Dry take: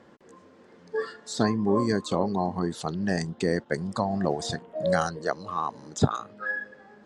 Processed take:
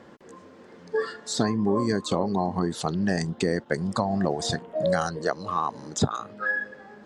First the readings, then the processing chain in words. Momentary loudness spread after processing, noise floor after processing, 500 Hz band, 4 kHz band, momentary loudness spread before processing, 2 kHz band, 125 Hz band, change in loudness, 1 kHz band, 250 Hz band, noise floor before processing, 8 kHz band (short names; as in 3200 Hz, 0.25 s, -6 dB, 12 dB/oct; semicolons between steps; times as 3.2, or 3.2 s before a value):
5 LU, -50 dBFS, +1.0 dB, +3.5 dB, 8 LU, +2.5 dB, +1.0 dB, +1.5 dB, +1.0 dB, +1.0 dB, -55 dBFS, +4.0 dB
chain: compressor 2.5:1, threshold -27 dBFS, peak gain reduction 9 dB; gain +5 dB